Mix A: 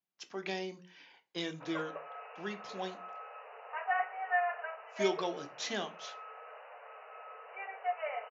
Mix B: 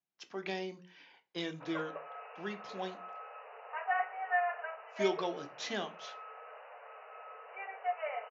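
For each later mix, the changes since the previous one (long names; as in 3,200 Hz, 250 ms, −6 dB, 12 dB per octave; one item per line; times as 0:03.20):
master: add high-frequency loss of the air 70 metres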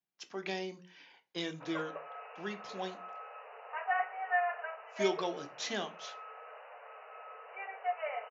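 master: remove high-frequency loss of the air 70 metres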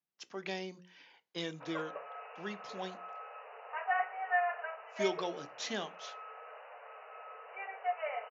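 speech: send −9.0 dB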